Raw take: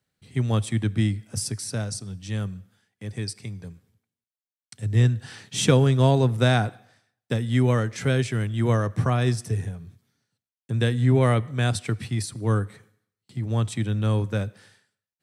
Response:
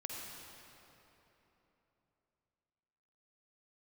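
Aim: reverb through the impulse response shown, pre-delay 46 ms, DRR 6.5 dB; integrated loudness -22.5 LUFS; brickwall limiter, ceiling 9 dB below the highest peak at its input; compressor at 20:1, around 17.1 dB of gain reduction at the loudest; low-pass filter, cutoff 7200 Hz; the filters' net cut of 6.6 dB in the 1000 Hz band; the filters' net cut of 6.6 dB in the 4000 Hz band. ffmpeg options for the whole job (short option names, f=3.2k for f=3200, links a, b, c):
-filter_complex "[0:a]lowpass=7.2k,equalizer=f=1k:t=o:g=-9,equalizer=f=4k:t=o:g=-7.5,acompressor=threshold=-31dB:ratio=20,alimiter=level_in=5.5dB:limit=-24dB:level=0:latency=1,volume=-5.5dB,asplit=2[a][b];[1:a]atrim=start_sample=2205,adelay=46[c];[b][c]afir=irnorm=-1:irlink=0,volume=-6dB[d];[a][d]amix=inputs=2:normalize=0,volume=15.5dB"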